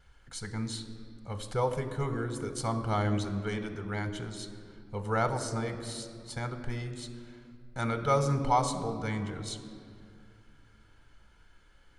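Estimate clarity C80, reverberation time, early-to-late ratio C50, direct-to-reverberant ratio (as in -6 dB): 10.5 dB, 2.3 s, 9.5 dB, 7.5 dB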